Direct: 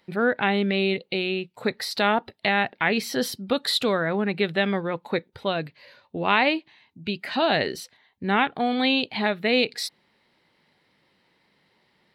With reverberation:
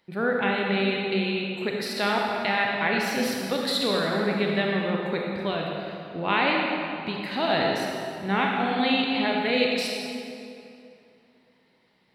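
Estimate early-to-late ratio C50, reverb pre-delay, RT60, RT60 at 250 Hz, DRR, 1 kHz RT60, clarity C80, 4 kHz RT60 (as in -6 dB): -0.5 dB, 30 ms, 2.6 s, 2.8 s, -1.5 dB, 2.5 s, 1.0 dB, 1.9 s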